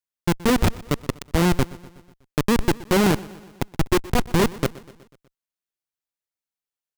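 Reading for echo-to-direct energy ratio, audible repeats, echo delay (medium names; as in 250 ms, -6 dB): -18.0 dB, 4, 123 ms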